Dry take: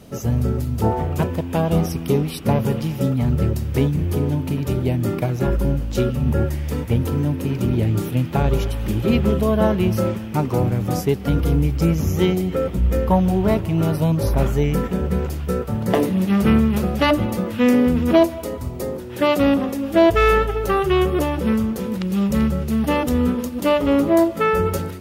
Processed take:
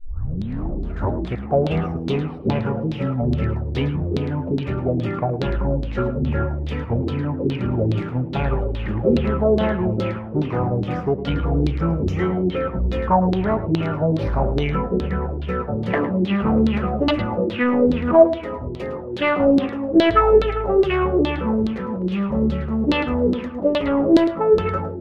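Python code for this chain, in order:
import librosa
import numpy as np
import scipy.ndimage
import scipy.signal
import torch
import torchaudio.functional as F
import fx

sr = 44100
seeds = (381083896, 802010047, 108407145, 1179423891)

p1 = fx.tape_start_head(x, sr, length_s=1.8)
p2 = 10.0 ** (-10.5 / 20.0) * np.tanh(p1 / 10.0 ** (-10.5 / 20.0))
p3 = fx.filter_lfo_lowpass(p2, sr, shape='saw_down', hz=2.4, low_hz=310.0, high_hz=4000.0, q=4.7)
p4 = p3 + fx.echo_single(p3, sr, ms=108, db=-14.0, dry=0)
y = p4 * 10.0 ** (-2.5 / 20.0)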